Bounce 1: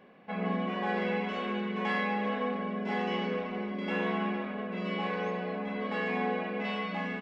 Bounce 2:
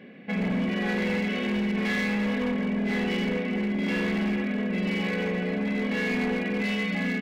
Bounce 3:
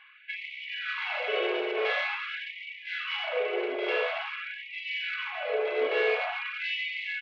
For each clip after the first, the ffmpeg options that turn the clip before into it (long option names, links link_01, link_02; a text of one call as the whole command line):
ffmpeg -i in.wav -filter_complex "[0:a]equalizer=frequency=125:width_type=o:width=1:gain=8,equalizer=frequency=250:width_type=o:width=1:gain=10,equalizer=frequency=500:width_type=o:width=1:gain=4,equalizer=frequency=1000:width_type=o:width=1:gain=-10,equalizer=frequency=2000:width_type=o:width=1:gain=11,equalizer=frequency=4000:width_type=o:width=1:gain=5,asplit=2[link_01][link_02];[link_02]alimiter=limit=-23.5dB:level=0:latency=1:release=235,volume=1.5dB[link_03];[link_01][link_03]amix=inputs=2:normalize=0,asoftclip=type=hard:threshold=-18.5dB,volume=-4.5dB" out.wav
ffmpeg -i in.wav -af "crystalizer=i=5.5:c=0,highpass=frequency=100:width=0.5412,highpass=frequency=100:width=1.3066,equalizer=frequency=130:width_type=q:width=4:gain=9,equalizer=frequency=430:width_type=q:width=4:gain=9,equalizer=frequency=640:width_type=q:width=4:gain=10,equalizer=frequency=1300:width_type=q:width=4:gain=6,equalizer=frequency=1900:width_type=q:width=4:gain=-9,lowpass=frequency=3000:width=0.5412,lowpass=frequency=3000:width=1.3066,afftfilt=real='re*gte(b*sr/1024,300*pow(1900/300,0.5+0.5*sin(2*PI*0.47*pts/sr)))':imag='im*gte(b*sr/1024,300*pow(1900/300,0.5+0.5*sin(2*PI*0.47*pts/sr)))':win_size=1024:overlap=0.75,volume=-2dB" out.wav